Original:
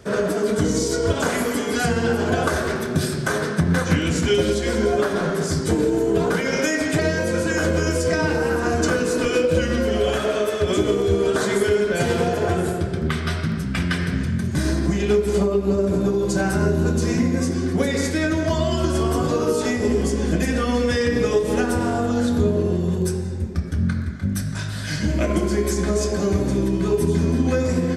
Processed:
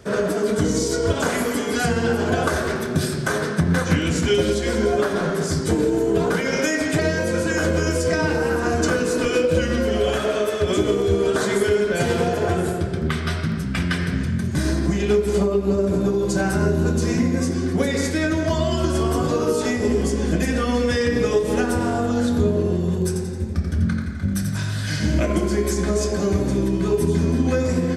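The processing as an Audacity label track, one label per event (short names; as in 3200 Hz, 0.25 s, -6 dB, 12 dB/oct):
23.070000	25.200000	feedback echo 87 ms, feedback 43%, level -6.5 dB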